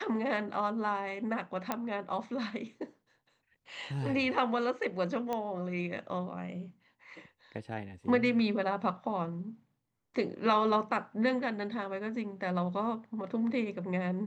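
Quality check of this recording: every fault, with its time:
1.72 s: pop -16 dBFS
5.33 s: pop -21 dBFS

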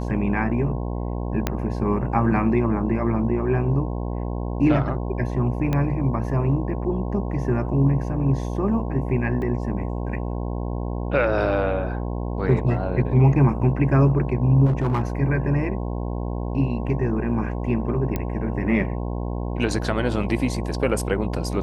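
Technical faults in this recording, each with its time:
buzz 60 Hz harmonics 18 -27 dBFS
1.47 s: pop -7 dBFS
5.73 s: pop -12 dBFS
9.42 s: dropout 2.1 ms
14.65–15.02 s: clipped -17 dBFS
18.16 s: pop -12 dBFS

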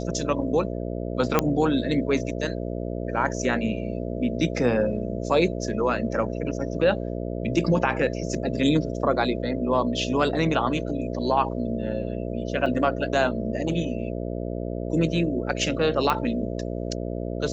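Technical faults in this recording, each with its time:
buzz 60 Hz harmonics 11 -30 dBFS
1.39 s: pop -5 dBFS
12.66 s: dropout 3.5 ms
16.10 s: pop -10 dBFS

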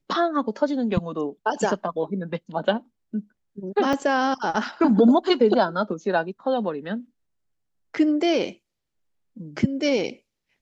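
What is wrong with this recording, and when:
3.93 s: dropout 3.2 ms

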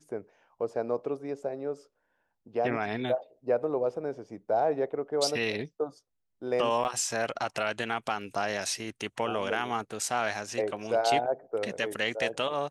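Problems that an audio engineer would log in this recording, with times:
6.84–6.85 s: dropout 9.2 ms

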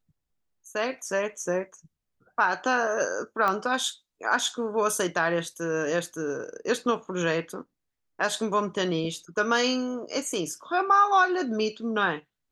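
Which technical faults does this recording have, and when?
3.48 s: pop -14 dBFS

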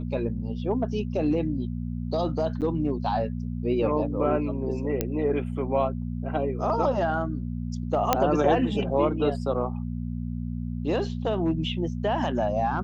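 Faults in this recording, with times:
hum 60 Hz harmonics 4 -31 dBFS
2.61–2.62 s: dropout 8.2 ms
5.01 s: pop -10 dBFS
8.13 s: pop -5 dBFS

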